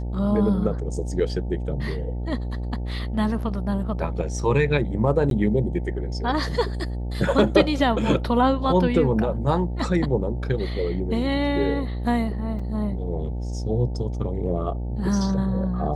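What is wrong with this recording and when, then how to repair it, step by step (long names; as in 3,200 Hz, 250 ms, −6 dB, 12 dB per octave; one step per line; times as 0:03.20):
mains buzz 60 Hz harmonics 15 −28 dBFS
0:05.30–0:05.31: drop-out 12 ms
0:12.59–0:12.60: drop-out 5 ms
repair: hum removal 60 Hz, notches 15
repair the gap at 0:05.30, 12 ms
repair the gap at 0:12.59, 5 ms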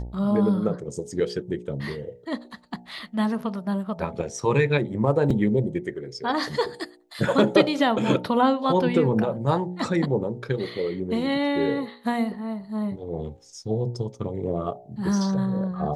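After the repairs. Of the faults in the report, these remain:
none of them is left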